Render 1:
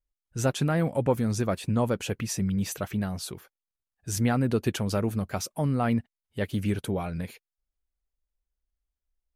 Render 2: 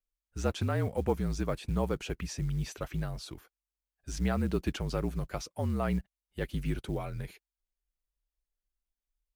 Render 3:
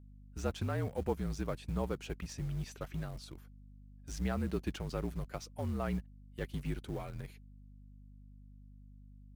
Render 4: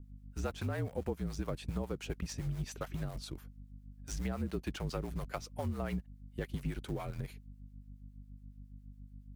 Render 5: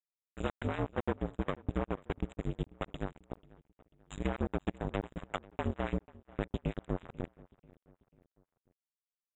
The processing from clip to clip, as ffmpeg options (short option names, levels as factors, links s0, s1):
-filter_complex "[0:a]acrossover=split=6500[s0][s1];[s1]acompressor=threshold=0.00251:ratio=4:attack=1:release=60[s2];[s0][s2]amix=inputs=2:normalize=0,afreqshift=-48,acrusher=bits=8:mode=log:mix=0:aa=0.000001,volume=0.562"
-filter_complex "[0:a]aeval=exprs='val(0)+0.00501*(sin(2*PI*50*n/s)+sin(2*PI*2*50*n/s)/2+sin(2*PI*3*50*n/s)/3+sin(2*PI*4*50*n/s)/4+sin(2*PI*5*50*n/s)/5)':c=same,asplit=2[s0][s1];[s1]aeval=exprs='val(0)*gte(abs(val(0)),0.02)':c=same,volume=0.335[s2];[s0][s2]amix=inputs=2:normalize=0,volume=0.422"
-filter_complex "[0:a]acrossover=split=540[s0][s1];[s0]aeval=exprs='val(0)*(1-0.7/2+0.7/2*cos(2*PI*7.2*n/s))':c=same[s2];[s1]aeval=exprs='val(0)*(1-0.7/2-0.7/2*cos(2*PI*7.2*n/s))':c=same[s3];[s2][s3]amix=inputs=2:normalize=0,acompressor=threshold=0.0112:ratio=6,volume=2.24"
-filter_complex "[0:a]aresample=16000,acrusher=bits=4:mix=0:aa=0.5,aresample=44100,asuperstop=centerf=5200:order=20:qfactor=1.7,asplit=2[s0][s1];[s1]adelay=490,lowpass=f=4000:p=1,volume=0.0794,asplit=2[s2][s3];[s3]adelay=490,lowpass=f=4000:p=1,volume=0.47,asplit=2[s4][s5];[s5]adelay=490,lowpass=f=4000:p=1,volume=0.47[s6];[s0][s2][s4][s6]amix=inputs=4:normalize=0,volume=1.41"